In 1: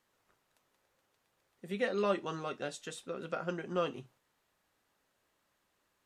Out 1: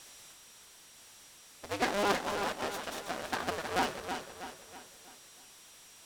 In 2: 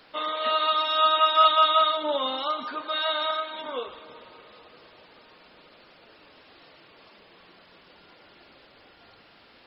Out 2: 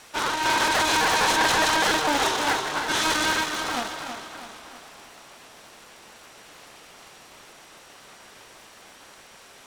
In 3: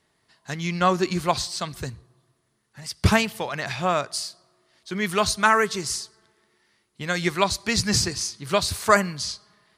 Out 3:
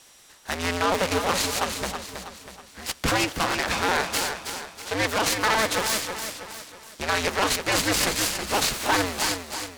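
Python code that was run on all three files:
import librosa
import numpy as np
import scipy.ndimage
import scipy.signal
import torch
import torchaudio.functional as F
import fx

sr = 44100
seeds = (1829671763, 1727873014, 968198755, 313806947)

p1 = fx.cycle_switch(x, sr, every=2, mode='inverted')
p2 = fx.low_shelf(p1, sr, hz=220.0, db=-11.5)
p3 = fx.over_compress(p2, sr, threshold_db=-25.0, ratio=-0.5)
p4 = p2 + (p3 * librosa.db_to_amplitude(1.0))
p5 = p4 + 10.0 ** (-46.0 / 20.0) * np.sin(2.0 * np.pi * 5700.0 * np.arange(len(p4)) / sr)
p6 = 10.0 ** (-9.5 / 20.0) * np.tanh(p5 / 10.0 ** (-9.5 / 20.0))
p7 = scipy.signal.sosfilt(scipy.signal.butter(2, 7800.0, 'lowpass', fs=sr, output='sos'), p6)
p8 = p7 + fx.echo_feedback(p7, sr, ms=322, feedback_pct=46, wet_db=-7.5, dry=0)
p9 = fx.noise_mod_delay(p8, sr, seeds[0], noise_hz=2100.0, depth_ms=0.041)
y = p9 * librosa.db_to_amplitude(-3.0)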